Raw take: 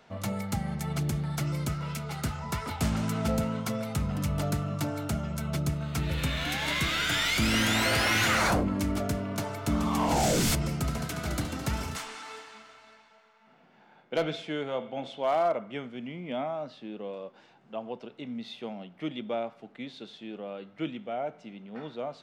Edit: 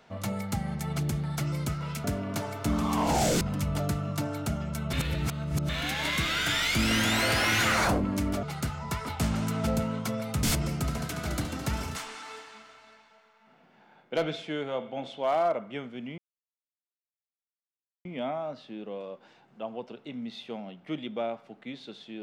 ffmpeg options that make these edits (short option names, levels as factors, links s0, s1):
-filter_complex "[0:a]asplit=8[s0][s1][s2][s3][s4][s5][s6][s7];[s0]atrim=end=2.042[s8];[s1]atrim=start=9.058:end=10.432[s9];[s2]atrim=start=4.038:end=5.562[s10];[s3]atrim=start=5.558:end=6.322,asetpts=PTS-STARTPTS,areverse[s11];[s4]atrim=start=6.318:end=9.062[s12];[s5]atrim=start=2.038:end=4.042[s13];[s6]atrim=start=10.428:end=16.18,asetpts=PTS-STARTPTS,afade=t=out:st=5.748:d=0.004:c=hsin,apad=pad_dur=1.87[s14];[s7]atrim=start=16.18,asetpts=PTS-STARTPTS,afade=t=in:d=0.004:c=hsin[s15];[s8][s9]acrossfade=d=0.004:c1=hsin:c2=hsin[s16];[s16][s10]acrossfade=d=0.004:c1=hsin:c2=hsin[s17];[s17][s11]acrossfade=d=0.004:c1=hsin:c2=hsin[s18];[s18][s12]acrossfade=d=0.004:c1=hsin:c2=hsin[s19];[s19][s13]acrossfade=d=0.004:c1=hsin:c2=hsin[s20];[s14][s15]concat=n=2:v=0:a=1[s21];[s20][s21]acrossfade=d=0.004:c1=hsin:c2=hsin"